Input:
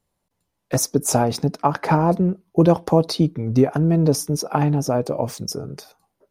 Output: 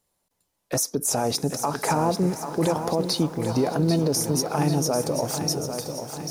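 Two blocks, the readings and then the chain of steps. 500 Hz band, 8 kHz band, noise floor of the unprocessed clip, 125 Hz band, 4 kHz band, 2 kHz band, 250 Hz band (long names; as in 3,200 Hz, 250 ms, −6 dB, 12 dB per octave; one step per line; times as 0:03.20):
−4.0 dB, +1.0 dB, −77 dBFS, −6.5 dB, +2.0 dB, −2.5 dB, −5.0 dB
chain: bass and treble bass −6 dB, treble +6 dB
brickwall limiter −14 dBFS, peak gain reduction 11 dB
on a send: feedback delay with all-pass diffusion 458 ms, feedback 49%, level −15 dB
on the sum: feedback echo at a low word length 792 ms, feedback 55%, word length 8 bits, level −8 dB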